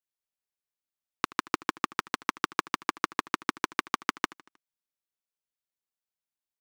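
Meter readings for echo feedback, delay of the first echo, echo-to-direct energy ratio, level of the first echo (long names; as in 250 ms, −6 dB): 52%, 78 ms, −20.0 dB, −21.5 dB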